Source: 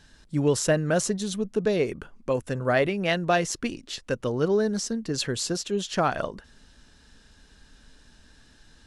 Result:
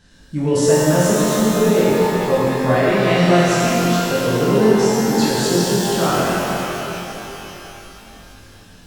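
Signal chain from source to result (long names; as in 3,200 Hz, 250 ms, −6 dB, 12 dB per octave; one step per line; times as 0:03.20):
parametric band 150 Hz +5.5 dB 2.8 octaves
on a send: flutter between parallel walls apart 3.9 metres, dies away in 0.22 s
on the sum: boost into a limiter +10 dB
reverb with rising layers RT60 3.4 s, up +12 semitones, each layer −8 dB, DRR −8 dB
level −12 dB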